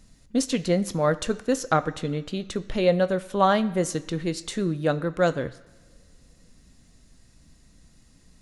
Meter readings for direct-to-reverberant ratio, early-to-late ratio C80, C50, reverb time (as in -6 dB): 10.5 dB, 18.5 dB, 17.0 dB, 2.1 s